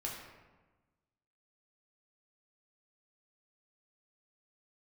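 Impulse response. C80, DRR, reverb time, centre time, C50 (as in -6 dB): 4.5 dB, -3.0 dB, 1.2 s, 57 ms, 3.0 dB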